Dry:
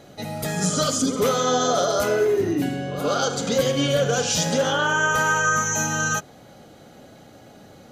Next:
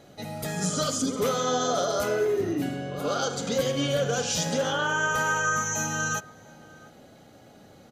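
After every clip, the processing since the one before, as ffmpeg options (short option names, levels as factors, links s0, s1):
-filter_complex "[0:a]asplit=2[s0][s1];[s1]adelay=699.7,volume=0.0891,highshelf=f=4000:g=-15.7[s2];[s0][s2]amix=inputs=2:normalize=0,volume=0.562"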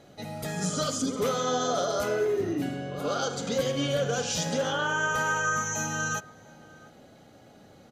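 -af "highshelf=f=9800:g=-5,volume=0.841"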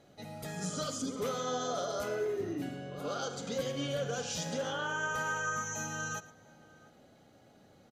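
-af "aecho=1:1:113:0.119,volume=0.422"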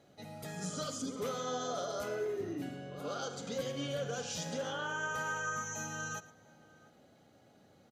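-af "highpass=59,volume=0.75"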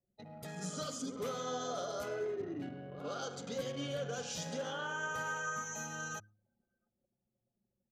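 -af "anlmdn=0.0158,bandreject=f=104.9:t=h:w=4,bandreject=f=209.8:t=h:w=4,bandreject=f=314.7:t=h:w=4,volume=0.841"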